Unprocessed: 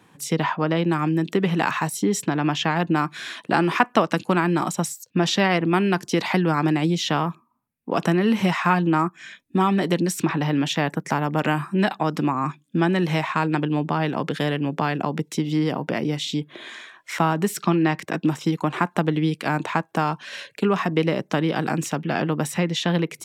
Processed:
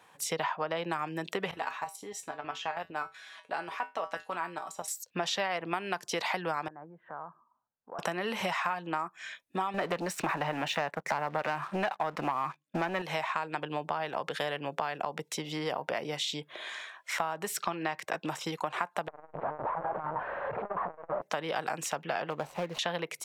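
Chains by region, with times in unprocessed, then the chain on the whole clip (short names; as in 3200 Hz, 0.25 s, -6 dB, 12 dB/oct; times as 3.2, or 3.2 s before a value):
1.51–4.88 bell 540 Hz +3 dB 2.7 oct + level quantiser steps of 10 dB + resonator 88 Hz, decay 0.22 s, harmonics odd, mix 80%
6.68–7.99 Chebyshev low-pass 1600 Hz, order 5 + compressor 2:1, threshold -47 dBFS
9.74–13.02 tone controls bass +1 dB, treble -12 dB + notch 3300 Hz, Q 8.7 + sample leveller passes 2
19.08–21.22 infinite clipping + LPF 1200 Hz 24 dB/oct + core saturation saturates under 160 Hz
22.3–22.79 median filter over 25 samples + decimation joined by straight lines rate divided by 2×
whole clip: resonant low shelf 410 Hz -12 dB, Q 1.5; compressor, threshold -26 dBFS; gain -2.5 dB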